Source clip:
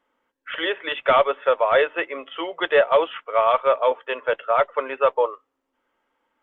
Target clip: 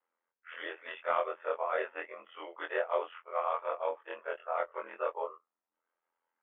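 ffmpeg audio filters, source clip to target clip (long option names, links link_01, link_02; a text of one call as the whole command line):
ffmpeg -i in.wav -filter_complex "[0:a]afftfilt=real='re':imag='-im':win_size=2048:overlap=0.75,acrossover=split=400 2900:gain=0.158 1 0.0631[link_01][link_02][link_03];[link_01][link_02][link_03]amix=inputs=3:normalize=0,aeval=exprs='val(0)*sin(2*PI*42*n/s)':channel_layout=same,equalizer=frequency=120:width_type=o:width=0.44:gain=-9.5,volume=-6dB" out.wav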